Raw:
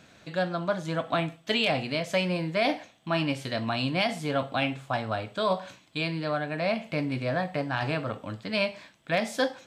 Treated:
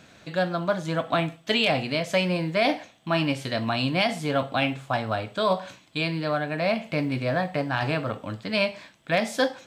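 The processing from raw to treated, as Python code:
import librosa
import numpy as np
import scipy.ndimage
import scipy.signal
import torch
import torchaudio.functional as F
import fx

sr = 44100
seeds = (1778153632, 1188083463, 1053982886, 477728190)

y = fx.quant_float(x, sr, bits=6)
y = y * librosa.db_to_amplitude(3.0)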